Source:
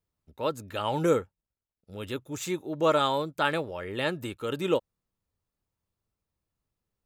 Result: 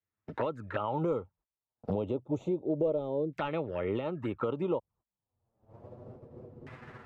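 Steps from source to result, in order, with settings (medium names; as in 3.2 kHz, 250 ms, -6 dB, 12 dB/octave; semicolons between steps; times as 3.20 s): recorder AGC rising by 31 dB/s; high-pass 56 Hz 12 dB/octave; gate -55 dBFS, range -23 dB; treble shelf 4.4 kHz +9.5 dB; hard clipper -16 dBFS, distortion -20 dB; touch-sensitive flanger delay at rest 9.3 ms, full sweep at -23.5 dBFS; LFO low-pass saw down 0.3 Hz 420–2000 Hz; three bands compressed up and down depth 70%; trim -6 dB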